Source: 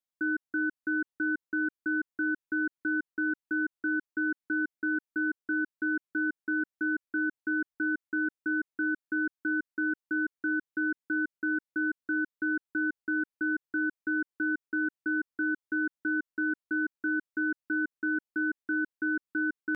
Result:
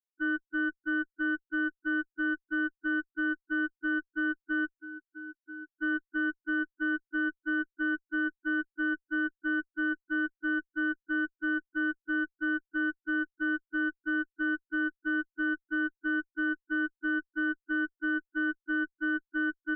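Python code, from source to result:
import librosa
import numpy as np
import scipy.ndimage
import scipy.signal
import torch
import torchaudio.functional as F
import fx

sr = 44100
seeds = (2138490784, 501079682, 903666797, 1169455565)

y = fx.clip_hard(x, sr, threshold_db=-39.0, at=(4.75, 5.7))
y = fx.spec_topn(y, sr, count=4)
y = fx.cheby_harmonics(y, sr, harmonics=(2,), levels_db=(-18,), full_scale_db=-22.5)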